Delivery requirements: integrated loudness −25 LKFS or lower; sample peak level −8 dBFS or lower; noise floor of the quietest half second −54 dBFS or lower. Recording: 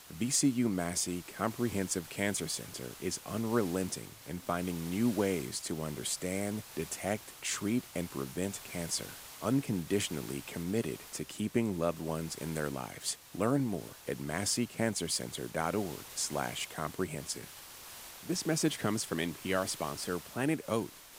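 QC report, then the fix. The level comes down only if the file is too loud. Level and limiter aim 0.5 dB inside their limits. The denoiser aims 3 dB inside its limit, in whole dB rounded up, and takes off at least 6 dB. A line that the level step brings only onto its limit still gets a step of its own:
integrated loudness −34.5 LKFS: in spec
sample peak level −15.5 dBFS: in spec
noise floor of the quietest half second −50 dBFS: out of spec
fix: broadband denoise 7 dB, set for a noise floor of −50 dBFS

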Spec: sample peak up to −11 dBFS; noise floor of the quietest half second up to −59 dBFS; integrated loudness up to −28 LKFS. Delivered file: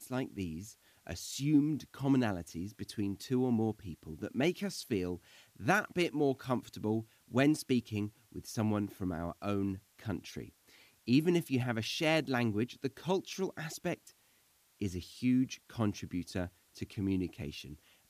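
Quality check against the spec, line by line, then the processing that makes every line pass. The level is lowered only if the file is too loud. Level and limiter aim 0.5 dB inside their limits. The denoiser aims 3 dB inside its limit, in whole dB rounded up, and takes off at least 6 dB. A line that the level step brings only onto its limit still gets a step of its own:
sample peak −16.0 dBFS: in spec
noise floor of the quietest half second −69 dBFS: in spec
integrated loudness −34.5 LKFS: in spec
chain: no processing needed

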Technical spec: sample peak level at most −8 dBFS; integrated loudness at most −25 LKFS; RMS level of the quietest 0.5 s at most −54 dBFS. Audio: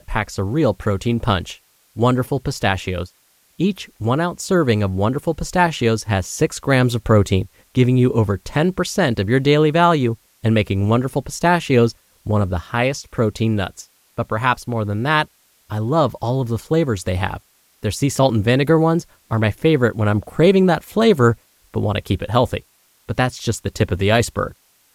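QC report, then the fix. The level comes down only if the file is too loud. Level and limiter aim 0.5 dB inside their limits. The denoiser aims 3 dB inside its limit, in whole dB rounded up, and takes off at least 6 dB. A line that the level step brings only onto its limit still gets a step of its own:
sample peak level −2.0 dBFS: out of spec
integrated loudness −19.0 LKFS: out of spec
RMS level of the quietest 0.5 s −57 dBFS: in spec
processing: level −6.5 dB

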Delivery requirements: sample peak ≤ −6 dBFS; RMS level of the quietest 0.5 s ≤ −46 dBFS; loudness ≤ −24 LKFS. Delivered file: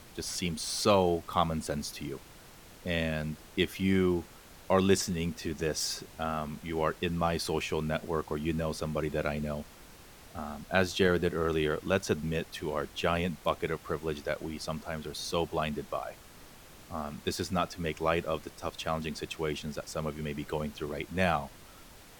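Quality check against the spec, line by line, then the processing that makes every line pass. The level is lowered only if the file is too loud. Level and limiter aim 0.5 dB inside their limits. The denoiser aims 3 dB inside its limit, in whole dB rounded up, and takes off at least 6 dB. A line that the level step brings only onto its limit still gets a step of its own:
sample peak −10.0 dBFS: in spec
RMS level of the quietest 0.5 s −52 dBFS: in spec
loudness −32.0 LKFS: in spec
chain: no processing needed

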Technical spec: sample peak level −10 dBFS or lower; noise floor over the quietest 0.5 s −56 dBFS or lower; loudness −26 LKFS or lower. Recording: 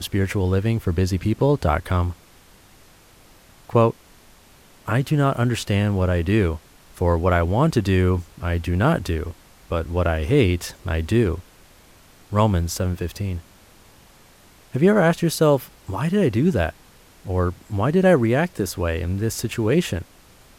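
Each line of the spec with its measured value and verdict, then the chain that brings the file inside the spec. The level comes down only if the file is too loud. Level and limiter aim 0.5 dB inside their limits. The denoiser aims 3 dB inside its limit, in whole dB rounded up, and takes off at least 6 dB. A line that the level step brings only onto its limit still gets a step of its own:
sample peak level −5.0 dBFS: out of spec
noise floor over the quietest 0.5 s −51 dBFS: out of spec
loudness −21.5 LKFS: out of spec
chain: broadband denoise 6 dB, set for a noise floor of −51 dBFS
level −5 dB
brickwall limiter −10.5 dBFS

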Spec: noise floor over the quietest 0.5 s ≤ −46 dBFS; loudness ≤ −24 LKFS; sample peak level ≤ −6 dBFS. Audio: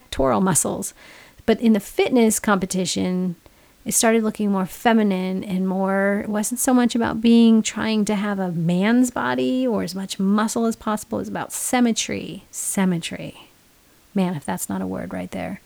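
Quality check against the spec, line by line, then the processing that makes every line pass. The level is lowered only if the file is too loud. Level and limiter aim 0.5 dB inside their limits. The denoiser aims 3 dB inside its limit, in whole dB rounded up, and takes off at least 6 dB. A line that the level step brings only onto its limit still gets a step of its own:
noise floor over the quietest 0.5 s −55 dBFS: in spec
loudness −21.0 LKFS: out of spec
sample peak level −4.5 dBFS: out of spec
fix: level −3.5 dB

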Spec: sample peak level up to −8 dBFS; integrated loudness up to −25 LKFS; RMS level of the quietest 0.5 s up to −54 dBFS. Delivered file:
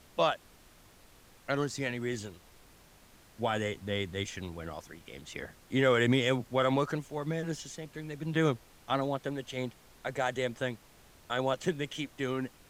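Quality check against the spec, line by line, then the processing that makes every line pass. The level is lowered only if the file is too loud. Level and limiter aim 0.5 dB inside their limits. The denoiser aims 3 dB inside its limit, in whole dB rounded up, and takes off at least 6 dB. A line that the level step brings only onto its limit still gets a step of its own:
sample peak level −13.0 dBFS: in spec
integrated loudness −33.0 LKFS: in spec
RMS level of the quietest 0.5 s −58 dBFS: in spec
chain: no processing needed

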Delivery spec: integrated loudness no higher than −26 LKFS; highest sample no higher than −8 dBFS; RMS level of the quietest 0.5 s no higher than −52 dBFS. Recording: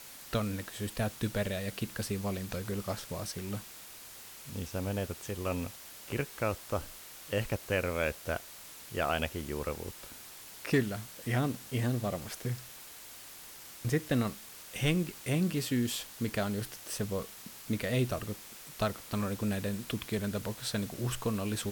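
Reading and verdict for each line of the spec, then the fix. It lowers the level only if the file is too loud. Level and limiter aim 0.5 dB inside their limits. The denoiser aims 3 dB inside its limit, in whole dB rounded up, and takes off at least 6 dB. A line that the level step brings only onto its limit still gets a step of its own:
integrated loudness −34.5 LKFS: in spec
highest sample −17.0 dBFS: in spec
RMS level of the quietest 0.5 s −49 dBFS: out of spec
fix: broadband denoise 6 dB, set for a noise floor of −49 dBFS

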